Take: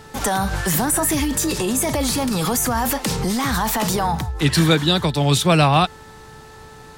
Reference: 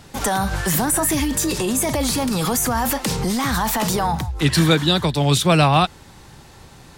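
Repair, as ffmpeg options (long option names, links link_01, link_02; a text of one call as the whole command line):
ffmpeg -i in.wav -af "bandreject=frequency=437.6:width_type=h:width=4,bandreject=frequency=875.2:width_type=h:width=4,bandreject=frequency=1312.8:width_type=h:width=4,bandreject=frequency=1750.4:width_type=h:width=4" out.wav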